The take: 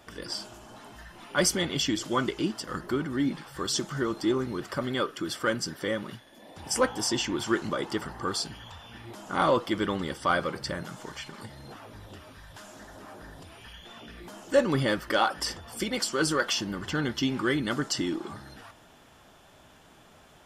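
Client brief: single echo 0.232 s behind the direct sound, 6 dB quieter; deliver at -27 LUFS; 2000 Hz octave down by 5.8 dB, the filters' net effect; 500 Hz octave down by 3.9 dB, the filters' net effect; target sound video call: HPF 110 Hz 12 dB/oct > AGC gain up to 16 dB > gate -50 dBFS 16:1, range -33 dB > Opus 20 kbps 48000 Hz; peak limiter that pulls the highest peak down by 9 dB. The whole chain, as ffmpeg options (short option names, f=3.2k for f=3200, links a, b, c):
-af "equalizer=f=500:t=o:g=-4.5,equalizer=f=2k:t=o:g=-8,alimiter=limit=-21.5dB:level=0:latency=1,highpass=110,aecho=1:1:232:0.501,dynaudnorm=m=16dB,agate=range=-33dB:threshold=-50dB:ratio=16,volume=-1dB" -ar 48000 -c:a libopus -b:a 20k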